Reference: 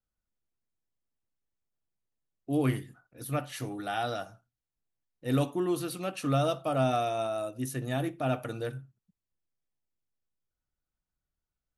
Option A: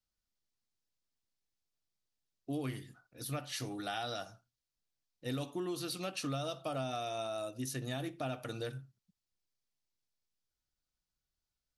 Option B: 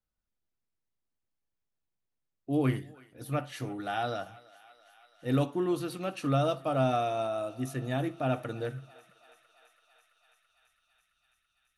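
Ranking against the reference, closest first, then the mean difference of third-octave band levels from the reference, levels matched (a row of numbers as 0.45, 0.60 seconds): B, A; 2.0, 4.0 decibels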